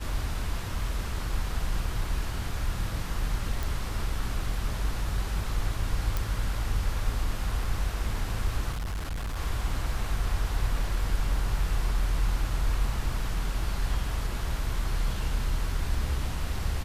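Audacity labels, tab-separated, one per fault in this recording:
3.630000	3.630000	click
6.170000	6.170000	click
8.720000	9.370000	clipping −29 dBFS

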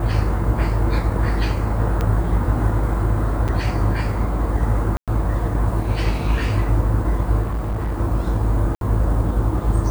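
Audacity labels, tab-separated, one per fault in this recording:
2.010000	2.010000	click −10 dBFS
3.480000	3.490000	drop-out 6 ms
4.970000	5.080000	drop-out 107 ms
7.420000	7.960000	clipping −19.5 dBFS
8.750000	8.810000	drop-out 62 ms

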